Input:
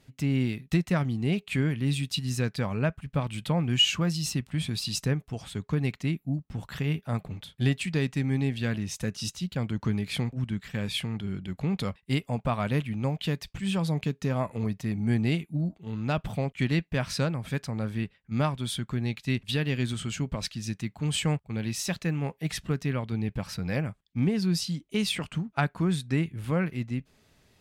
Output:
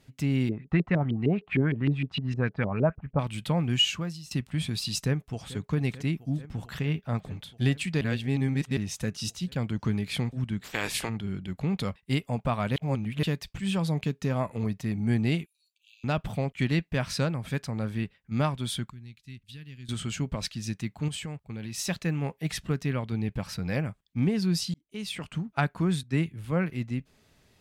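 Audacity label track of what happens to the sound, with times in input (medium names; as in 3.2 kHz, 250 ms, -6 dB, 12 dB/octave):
0.490000	3.190000	LFO low-pass saw up 6.5 Hz 340–3100 Hz
3.710000	4.310000	fade out, to -20.5 dB
5.030000	5.570000	echo throw 440 ms, feedback 85%, level -16.5 dB
6.790000	7.250000	peaking EQ 11 kHz -13.5 dB 0.79 oct
8.010000	8.770000	reverse
10.630000	11.080000	spectral peaks clipped ceiling under each frame's peak by 24 dB
12.760000	13.230000	reverse
15.460000	16.040000	brick-wall FIR high-pass 2.3 kHz
18.900000	19.890000	amplifier tone stack bass-middle-treble 6-0-2
21.080000	21.780000	compression 5:1, threshold -33 dBFS
24.740000	25.490000	fade in
26.030000	26.700000	three bands expanded up and down depth 70%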